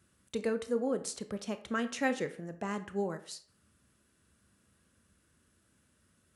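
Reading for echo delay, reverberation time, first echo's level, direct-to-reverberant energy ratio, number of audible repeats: no echo audible, 0.50 s, no echo audible, 10.0 dB, no echo audible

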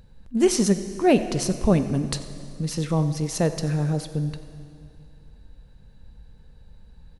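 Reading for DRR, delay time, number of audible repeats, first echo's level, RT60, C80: 9.5 dB, 92 ms, 1, −18.5 dB, 2.5 s, 11.0 dB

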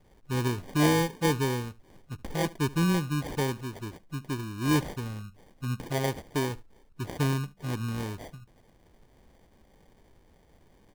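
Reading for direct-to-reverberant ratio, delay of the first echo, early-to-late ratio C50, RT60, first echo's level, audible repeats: no reverb audible, 73 ms, no reverb audible, no reverb audible, −21.0 dB, 1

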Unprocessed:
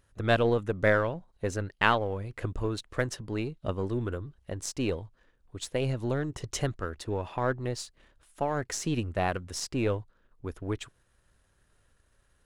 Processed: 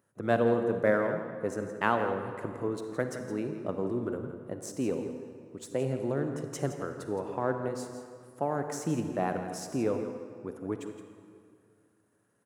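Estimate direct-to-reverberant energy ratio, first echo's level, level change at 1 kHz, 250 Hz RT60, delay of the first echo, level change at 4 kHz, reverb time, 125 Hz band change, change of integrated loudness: 5.5 dB, −11.5 dB, −1.5 dB, 2.4 s, 167 ms, −11.0 dB, 2.2 s, −5.5 dB, −1.5 dB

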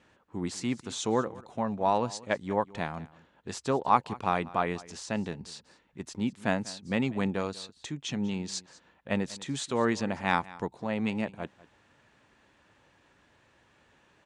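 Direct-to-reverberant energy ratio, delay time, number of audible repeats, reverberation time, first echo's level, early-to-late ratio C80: no reverb audible, 194 ms, 1, no reverb audible, −20.0 dB, no reverb audible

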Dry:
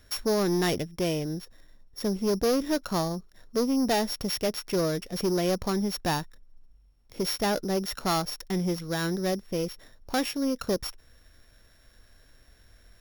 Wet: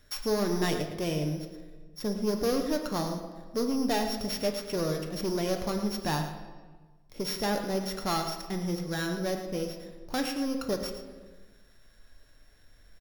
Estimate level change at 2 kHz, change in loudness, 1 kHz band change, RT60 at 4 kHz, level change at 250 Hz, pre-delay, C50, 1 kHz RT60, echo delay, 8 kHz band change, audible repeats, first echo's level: −2.0 dB, −2.5 dB, −2.0 dB, 1.0 s, −2.5 dB, 4 ms, 6.5 dB, 1.3 s, 111 ms, −3.5 dB, 1, −11.5 dB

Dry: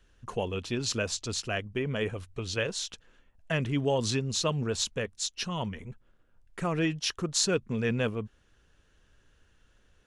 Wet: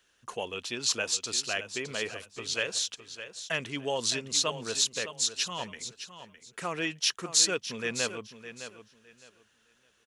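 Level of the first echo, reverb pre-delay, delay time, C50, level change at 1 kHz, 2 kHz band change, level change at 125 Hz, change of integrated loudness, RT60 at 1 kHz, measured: −11.5 dB, no reverb audible, 611 ms, no reverb audible, −0.5 dB, +2.0 dB, −13.5 dB, +1.0 dB, no reverb audible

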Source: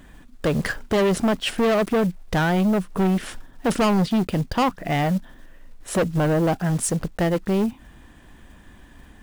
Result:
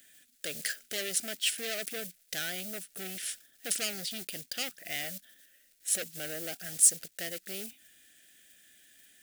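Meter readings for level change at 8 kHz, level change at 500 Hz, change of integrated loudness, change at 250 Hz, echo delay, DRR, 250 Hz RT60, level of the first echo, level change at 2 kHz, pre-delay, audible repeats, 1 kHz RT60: +4.5 dB, −20.5 dB, −9.5 dB, −26.5 dB, no echo audible, no reverb audible, no reverb audible, no echo audible, −9.0 dB, no reverb audible, no echo audible, no reverb audible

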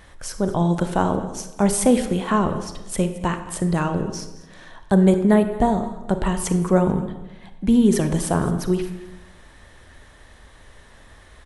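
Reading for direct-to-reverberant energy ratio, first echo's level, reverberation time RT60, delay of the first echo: 8.0 dB, −18.5 dB, 1.0 s, 219 ms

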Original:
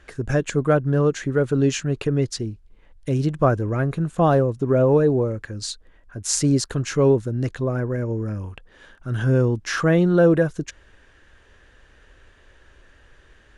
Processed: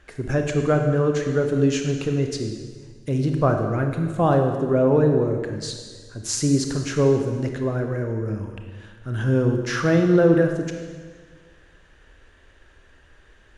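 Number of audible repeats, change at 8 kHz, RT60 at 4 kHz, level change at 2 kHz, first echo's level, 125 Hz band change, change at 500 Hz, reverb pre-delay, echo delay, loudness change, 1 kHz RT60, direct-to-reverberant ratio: no echo audible, −2.5 dB, 1.5 s, −1.0 dB, no echo audible, −1.0 dB, −0.5 dB, 25 ms, no echo audible, −0.5 dB, 1.5 s, 4.0 dB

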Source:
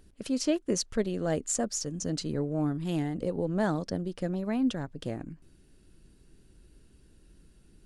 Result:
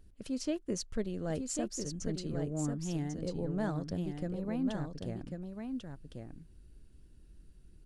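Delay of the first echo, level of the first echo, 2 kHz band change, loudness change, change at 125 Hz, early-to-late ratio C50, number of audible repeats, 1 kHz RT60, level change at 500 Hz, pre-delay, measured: 1,094 ms, −5.5 dB, −7.5 dB, −6.0 dB, −3.0 dB, no reverb audible, 1, no reverb audible, −6.5 dB, no reverb audible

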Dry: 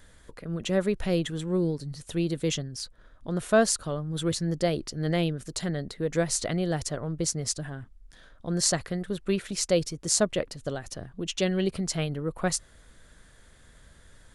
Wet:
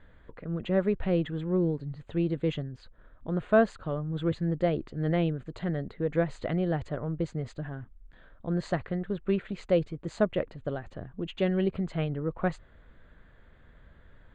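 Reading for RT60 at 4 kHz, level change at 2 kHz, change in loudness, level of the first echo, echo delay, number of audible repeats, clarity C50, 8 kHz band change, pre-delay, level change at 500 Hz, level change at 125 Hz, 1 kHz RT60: no reverb audible, −3.0 dB, −2.0 dB, no echo audible, no echo audible, no echo audible, no reverb audible, below −30 dB, no reverb audible, −0.5 dB, 0.0 dB, no reverb audible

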